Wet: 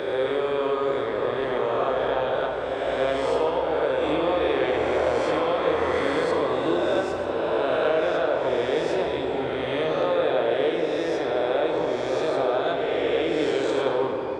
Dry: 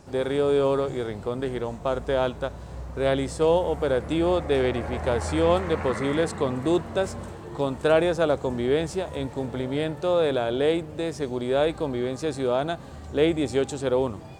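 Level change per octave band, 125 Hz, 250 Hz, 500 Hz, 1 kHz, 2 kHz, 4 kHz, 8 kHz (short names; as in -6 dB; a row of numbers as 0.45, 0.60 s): -8.0 dB, -2.0 dB, +1.5 dB, +4.0 dB, +4.0 dB, +2.0 dB, n/a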